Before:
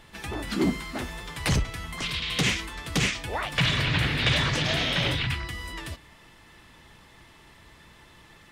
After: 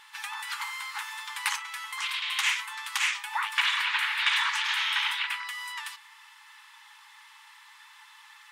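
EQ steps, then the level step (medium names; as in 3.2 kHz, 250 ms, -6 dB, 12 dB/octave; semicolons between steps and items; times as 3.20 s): brick-wall FIR high-pass 810 Hz; dynamic bell 4.9 kHz, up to -7 dB, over -43 dBFS, Q 1.1; +2.5 dB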